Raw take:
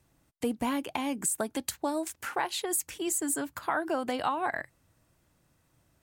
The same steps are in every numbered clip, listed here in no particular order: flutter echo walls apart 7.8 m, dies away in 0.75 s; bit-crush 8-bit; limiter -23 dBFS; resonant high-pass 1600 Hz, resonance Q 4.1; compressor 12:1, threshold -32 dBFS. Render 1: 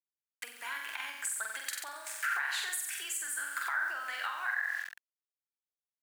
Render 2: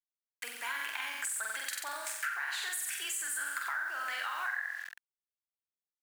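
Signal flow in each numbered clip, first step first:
flutter echo > bit-crush > compressor > resonant high-pass > limiter; flutter echo > limiter > bit-crush > resonant high-pass > compressor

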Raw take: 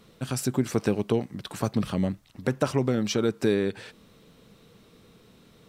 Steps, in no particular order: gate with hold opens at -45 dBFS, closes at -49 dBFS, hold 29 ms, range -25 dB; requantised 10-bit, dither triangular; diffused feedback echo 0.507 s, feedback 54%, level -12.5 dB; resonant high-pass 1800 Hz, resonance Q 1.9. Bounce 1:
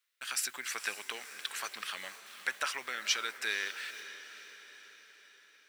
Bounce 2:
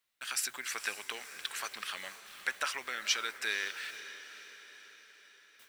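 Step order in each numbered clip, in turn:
requantised > resonant high-pass > gate with hold > diffused feedback echo; resonant high-pass > requantised > gate with hold > diffused feedback echo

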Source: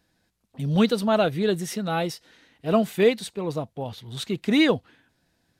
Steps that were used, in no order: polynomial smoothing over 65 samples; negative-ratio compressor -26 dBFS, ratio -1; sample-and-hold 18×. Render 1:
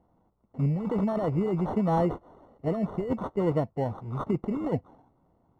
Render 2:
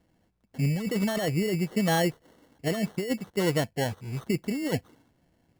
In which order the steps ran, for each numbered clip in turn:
sample-and-hold > polynomial smoothing > negative-ratio compressor; polynomial smoothing > negative-ratio compressor > sample-and-hold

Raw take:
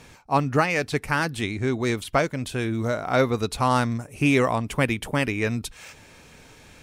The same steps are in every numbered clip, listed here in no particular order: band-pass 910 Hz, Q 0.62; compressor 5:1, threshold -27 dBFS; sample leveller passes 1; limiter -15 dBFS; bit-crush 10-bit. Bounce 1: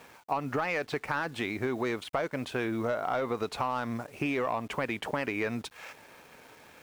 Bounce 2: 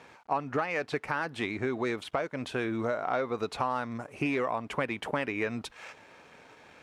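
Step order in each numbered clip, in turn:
limiter > band-pass > bit-crush > sample leveller > compressor; sample leveller > bit-crush > band-pass > compressor > limiter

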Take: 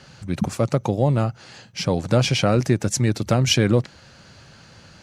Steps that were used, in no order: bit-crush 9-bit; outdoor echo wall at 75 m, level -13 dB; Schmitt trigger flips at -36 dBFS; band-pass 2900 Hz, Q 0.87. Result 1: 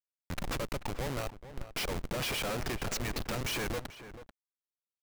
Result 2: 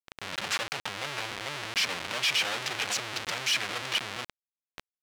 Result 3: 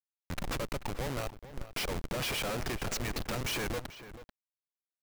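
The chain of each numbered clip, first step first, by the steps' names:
band-pass > Schmitt trigger > bit-crush > outdoor echo; outdoor echo > Schmitt trigger > band-pass > bit-crush; band-pass > Schmitt trigger > outdoor echo > bit-crush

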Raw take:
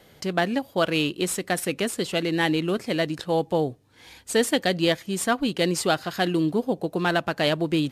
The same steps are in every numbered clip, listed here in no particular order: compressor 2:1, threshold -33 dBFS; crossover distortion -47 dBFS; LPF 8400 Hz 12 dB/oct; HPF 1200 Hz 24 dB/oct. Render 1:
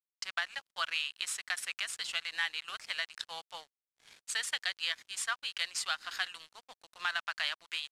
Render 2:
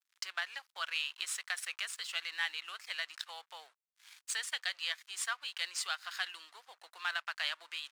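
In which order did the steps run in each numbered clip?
HPF > crossover distortion > compressor > LPF; LPF > crossover distortion > compressor > HPF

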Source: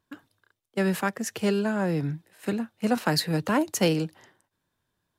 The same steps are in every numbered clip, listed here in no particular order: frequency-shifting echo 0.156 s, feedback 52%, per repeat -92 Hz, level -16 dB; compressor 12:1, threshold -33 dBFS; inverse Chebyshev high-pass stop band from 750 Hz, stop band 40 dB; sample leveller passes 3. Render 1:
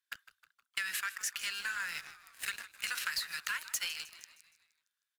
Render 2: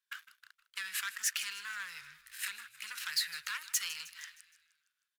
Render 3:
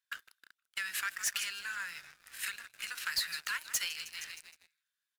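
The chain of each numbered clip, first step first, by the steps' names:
inverse Chebyshev high-pass > sample leveller > compressor > frequency-shifting echo; compressor > sample leveller > frequency-shifting echo > inverse Chebyshev high-pass; frequency-shifting echo > compressor > inverse Chebyshev high-pass > sample leveller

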